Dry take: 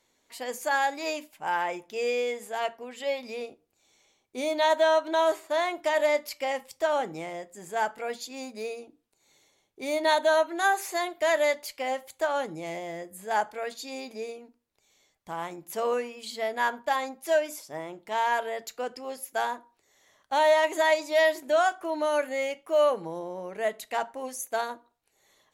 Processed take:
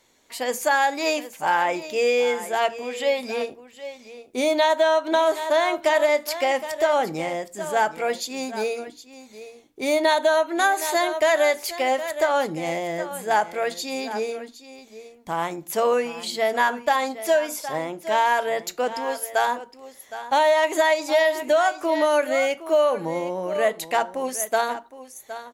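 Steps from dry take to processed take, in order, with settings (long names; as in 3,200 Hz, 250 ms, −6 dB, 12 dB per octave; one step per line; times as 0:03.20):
on a send: single-tap delay 765 ms −14.5 dB
on the sum: downward compressor, threshold −24 dBFS, peak gain reduction 7 dB
0:19.06–0:19.48: parametric band 220 Hz −13.5 dB 0.23 octaves
level +8.5 dB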